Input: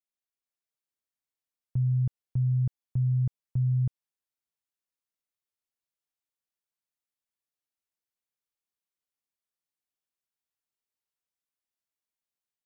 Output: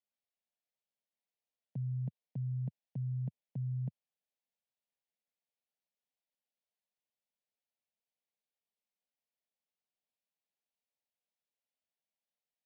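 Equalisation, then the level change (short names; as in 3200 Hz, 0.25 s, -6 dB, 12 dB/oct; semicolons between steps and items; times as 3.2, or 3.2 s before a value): Bessel high-pass 220 Hz, order 8; air absorption 240 m; fixed phaser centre 340 Hz, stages 6; +4.0 dB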